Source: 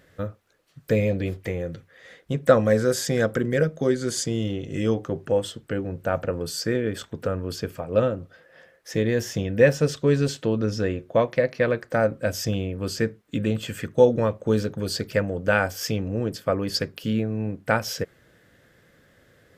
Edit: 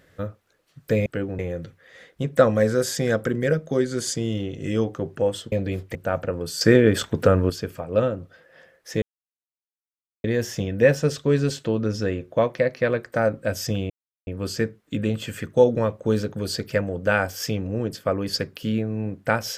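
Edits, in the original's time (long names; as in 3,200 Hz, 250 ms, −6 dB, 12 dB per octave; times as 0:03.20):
0:01.06–0:01.49: swap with 0:05.62–0:05.95
0:06.61–0:07.50: clip gain +9.5 dB
0:09.02: splice in silence 1.22 s
0:12.68: splice in silence 0.37 s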